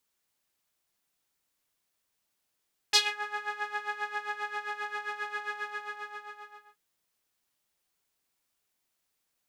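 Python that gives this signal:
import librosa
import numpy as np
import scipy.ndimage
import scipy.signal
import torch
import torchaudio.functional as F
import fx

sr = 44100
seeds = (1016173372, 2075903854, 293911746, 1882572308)

y = fx.sub_patch_tremolo(sr, seeds[0], note=68, wave='saw', wave2='saw', interval_st=12, detune_cents=15, level2_db=-4.0, sub_db=-26.0, noise_db=-30.0, kind='bandpass', cutoff_hz=1300.0, q=2.4, env_oct=2.0, env_decay_s=0.24, env_sustain_pct=10, attack_ms=8.5, decay_s=0.17, sustain_db=-18.5, release_s=1.27, note_s=2.57, lfo_hz=7.5, tremolo_db=12)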